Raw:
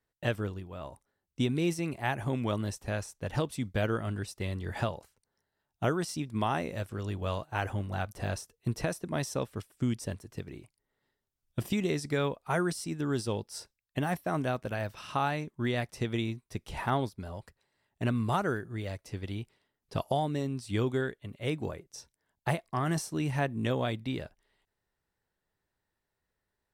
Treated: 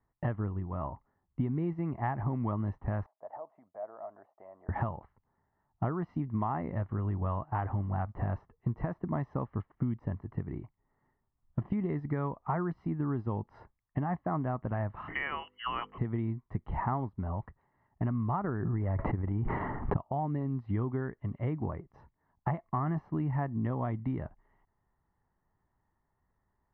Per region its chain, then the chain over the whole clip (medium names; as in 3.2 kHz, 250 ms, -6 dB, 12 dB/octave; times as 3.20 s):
3.06–4.69 s: compression 10:1, threshold -33 dBFS + ladder band-pass 690 Hz, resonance 75%
15.08–15.98 s: frequency inversion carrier 3.1 kHz + hum notches 50/100/150/200/250/300/350/400/450/500 Hz + upward compressor, threshold -41 dBFS
18.44–19.97 s: transient shaper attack +9 dB, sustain +4 dB + low-pass 2 kHz + swell ahead of each attack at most 20 dB/s
whole clip: low-pass 1.5 kHz 24 dB/octave; comb 1 ms, depth 52%; compression 4:1, threshold -36 dBFS; trim +6 dB